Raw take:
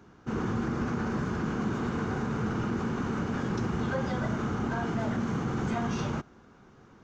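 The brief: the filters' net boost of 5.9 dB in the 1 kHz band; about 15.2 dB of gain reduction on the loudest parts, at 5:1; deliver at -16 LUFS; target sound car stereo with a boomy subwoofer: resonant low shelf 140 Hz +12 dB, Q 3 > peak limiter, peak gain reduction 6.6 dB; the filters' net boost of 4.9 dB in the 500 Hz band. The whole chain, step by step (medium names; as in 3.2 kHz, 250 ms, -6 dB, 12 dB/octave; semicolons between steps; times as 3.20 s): peaking EQ 500 Hz +6.5 dB; peaking EQ 1 kHz +6 dB; compression 5:1, threshold -39 dBFS; resonant low shelf 140 Hz +12 dB, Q 3; trim +22.5 dB; peak limiter -6.5 dBFS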